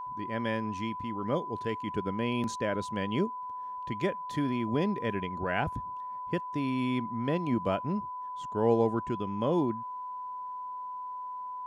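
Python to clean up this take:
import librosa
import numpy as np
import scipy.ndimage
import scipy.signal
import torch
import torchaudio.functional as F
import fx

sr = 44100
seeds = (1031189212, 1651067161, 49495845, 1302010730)

y = fx.notch(x, sr, hz=1000.0, q=30.0)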